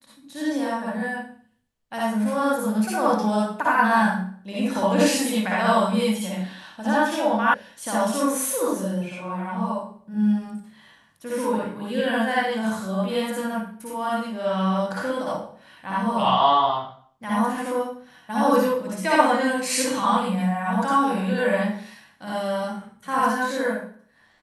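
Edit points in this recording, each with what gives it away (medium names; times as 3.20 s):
7.54 s: sound stops dead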